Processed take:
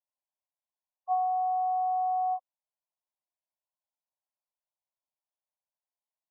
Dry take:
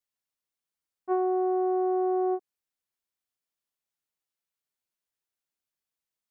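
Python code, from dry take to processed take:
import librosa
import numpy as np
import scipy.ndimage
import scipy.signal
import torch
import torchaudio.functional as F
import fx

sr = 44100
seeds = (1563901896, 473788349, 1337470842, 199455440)

p1 = fx.quant_companded(x, sr, bits=4)
p2 = x + F.gain(torch.from_numpy(p1), -5.0).numpy()
p3 = fx.brickwall_bandpass(p2, sr, low_hz=530.0, high_hz=1100.0)
y = F.gain(torch.from_numpy(p3), 1.0).numpy()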